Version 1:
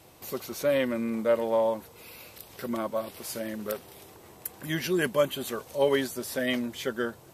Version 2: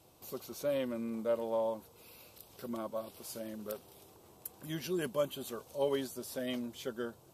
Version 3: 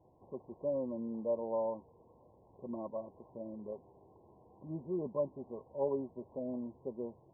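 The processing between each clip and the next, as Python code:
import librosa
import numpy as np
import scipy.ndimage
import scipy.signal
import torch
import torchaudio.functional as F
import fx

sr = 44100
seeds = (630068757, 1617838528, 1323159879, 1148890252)

y1 = fx.peak_eq(x, sr, hz=1900.0, db=-9.5, octaves=0.64)
y1 = y1 * librosa.db_to_amplitude(-8.0)
y2 = fx.brickwall_lowpass(y1, sr, high_hz=1100.0)
y2 = y2 * librosa.db_to_amplitude(-1.5)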